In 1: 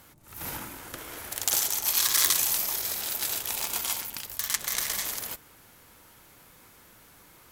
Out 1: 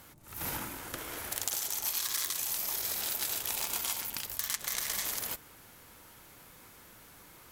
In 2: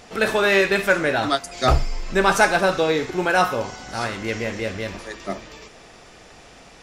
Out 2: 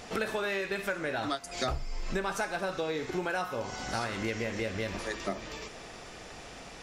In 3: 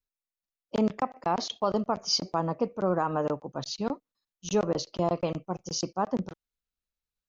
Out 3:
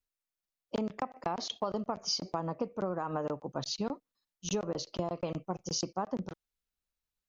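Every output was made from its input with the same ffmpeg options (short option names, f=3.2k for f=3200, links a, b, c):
-af "acompressor=threshold=-29dB:ratio=12"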